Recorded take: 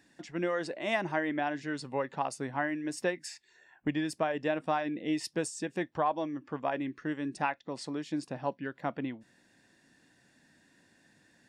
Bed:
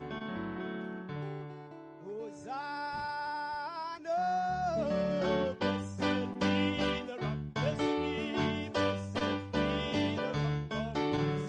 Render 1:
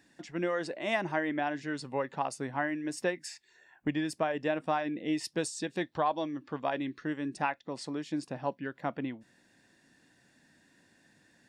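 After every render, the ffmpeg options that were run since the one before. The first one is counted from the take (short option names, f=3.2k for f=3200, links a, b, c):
-filter_complex "[0:a]asettb=1/sr,asplit=3[a][b][c];[a]atrim=end=5.374[d];[b]atrim=start=5.37:end=7.05,asetpts=PTS-STARTPTS,afade=t=in:d=0.004:c=qsin,afade=t=out:st=1.676:d=0.004:c=qsin,equalizer=f=4k:w=2.5:g=10[e];[c]atrim=start=7.046[f];[d][e]acrossfade=d=0.004:c1=hsin:c2=qsin[g];[g][f]acrossfade=d=0.004:c1=qsin:c2=hsin"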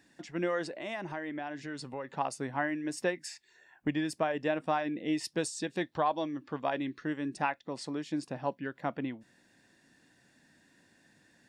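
-filter_complex "[0:a]asettb=1/sr,asplit=3[a][b][c];[a]atrim=end=0.654[d];[b]atrim=start=0.65:end=2.1,asetpts=PTS-STARTPTS,afade=t=in:d=0.004:c=qsin,afade=t=out:st=1.446:d=0.004:c=qsin,acompressor=threshold=-37dB:ratio=2.5:attack=3.2:release=140:knee=1:detection=peak[e];[c]atrim=start=2.096[f];[d][e]acrossfade=d=0.004:c1=hsin:c2=qsin[g];[g][f]acrossfade=d=0.004:c1=qsin:c2=hsin"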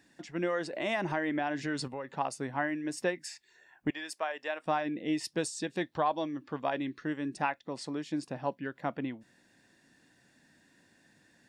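-filter_complex "[0:a]asettb=1/sr,asplit=3[a][b][c];[a]atrim=end=0.734[d];[b]atrim=start=0.73:end=1.88,asetpts=PTS-STARTPTS,afade=t=in:d=0.004:c=qsin,afade=t=out:st=1.146:d=0.004:c=qsin,acontrast=64[e];[c]atrim=start=1.876[f];[d][e]acrossfade=d=0.004:c1=hsin:c2=qsin[g];[g][f]acrossfade=d=0.004:c1=qsin:c2=hsin,asettb=1/sr,asplit=3[h][i][j];[h]atrim=end=3.904[k];[i]atrim=start=3.9:end=4.66,asetpts=PTS-STARTPTS,afade=t=in:d=0.004:c=qsin,afade=t=out:st=0.756:d=0.004:c=qsin,highpass=740[l];[j]atrim=start=4.656[m];[k][l]acrossfade=d=0.004:c1=hsin:c2=qsin[n];[n][m]acrossfade=d=0.004:c1=qsin:c2=hsin"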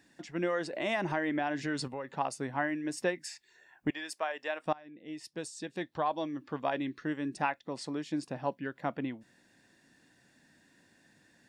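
-filter_complex "[0:a]asplit=2[a][b];[a]atrim=end=4.73,asetpts=PTS-STARTPTS,afade=t=out:st=4.726:d=0.004:c=hsin:silence=0.0630957[c];[b]atrim=start=4.73,asetpts=PTS-STARTPTS,afade=t=in:d=1.74:silence=0.0630957[d];[c][d]concat=n=2:v=0:a=1"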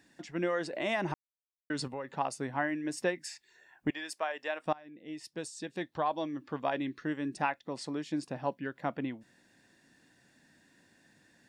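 -filter_complex "[0:a]asplit=3[a][b][c];[a]atrim=end=1.14,asetpts=PTS-STARTPTS,afade=t=out:st=1.136:d=0.004:c=hsin[d];[b]atrim=start=1.14:end=1.7,asetpts=PTS-STARTPTS,volume=0[e];[c]atrim=start=1.7,asetpts=PTS-STARTPTS,afade=t=in:d=0.004:c=hsin[f];[d][e][f]concat=n=3:v=0:a=1"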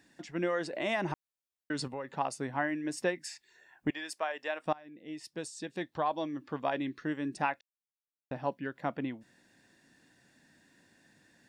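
-filter_complex "[0:a]asplit=3[a][b][c];[a]atrim=end=7.61,asetpts=PTS-STARTPTS,afade=t=out:st=7.606:d=0.004:c=hsin[d];[b]atrim=start=7.61:end=8.31,asetpts=PTS-STARTPTS,volume=0[e];[c]atrim=start=8.31,asetpts=PTS-STARTPTS,afade=t=in:d=0.004:c=hsin[f];[d][e][f]concat=n=3:v=0:a=1"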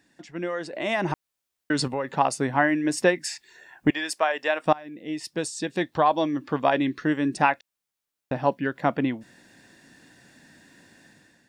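-af "dynaudnorm=f=690:g=3:m=11dB"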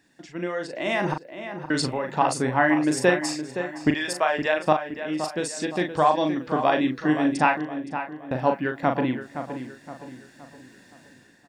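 -filter_complex "[0:a]asplit=2[a][b];[b]adelay=39,volume=-6dB[c];[a][c]amix=inputs=2:normalize=0,asplit=2[d][e];[e]adelay=518,lowpass=f=2.9k:p=1,volume=-9.5dB,asplit=2[f][g];[g]adelay=518,lowpass=f=2.9k:p=1,volume=0.43,asplit=2[h][i];[i]adelay=518,lowpass=f=2.9k:p=1,volume=0.43,asplit=2[j][k];[k]adelay=518,lowpass=f=2.9k:p=1,volume=0.43,asplit=2[l][m];[m]adelay=518,lowpass=f=2.9k:p=1,volume=0.43[n];[d][f][h][j][l][n]amix=inputs=6:normalize=0"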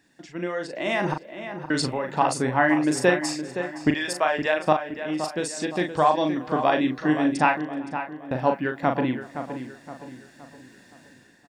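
-filter_complex "[0:a]asplit=2[a][b];[b]adelay=379,volume=-25dB,highshelf=f=4k:g=-8.53[c];[a][c]amix=inputs=2:normalize=0"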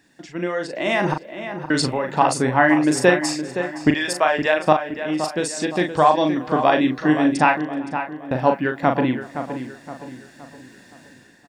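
-af "volume=4.5dB,alimiter=limit=-1dB:level=0:latency=1"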